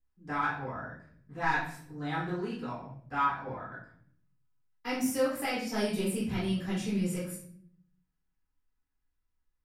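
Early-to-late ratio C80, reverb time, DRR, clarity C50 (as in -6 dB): 8.5 dB, 0.60 s, -12.0 dB, 3.5 dB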